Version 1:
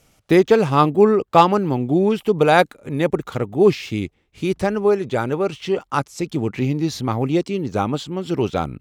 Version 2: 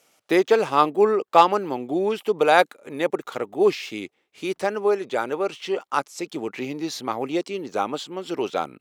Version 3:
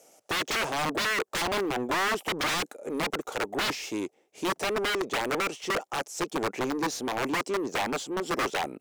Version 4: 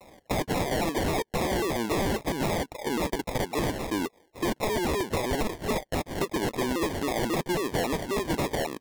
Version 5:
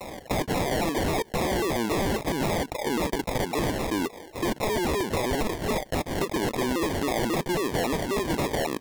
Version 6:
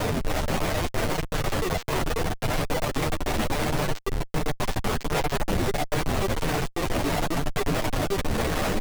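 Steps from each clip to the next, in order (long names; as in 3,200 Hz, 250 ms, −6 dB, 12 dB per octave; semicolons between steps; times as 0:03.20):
high-pass filter 390 Hz 12 dB per octave; level −1.5 dB
flat-topped bell 2,100 Hz −14.5 dB 2.5 octaves; wrap-around overflow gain 22.5 dB; mid-hump overdrive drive 18 dB, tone 3,700 Hz, clips at −22.5 dBFS
downward compressor, threshold −31 dBFS, peak gain reduction 6 dB; decimation without filtering 32×; pitch modulation by a square or saw wave saw down 3.7 Hz, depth 250 cents; level +6 dB
envelope flattener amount 50%
linear-prediction vocoder at 8 kHz pitch kept; comparator with hysteresis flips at −38.5 dBFS; multi-voice chorus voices 4, 0.7 Hz, delay 10 ms, depth 3.6 ms; level +5.5 dB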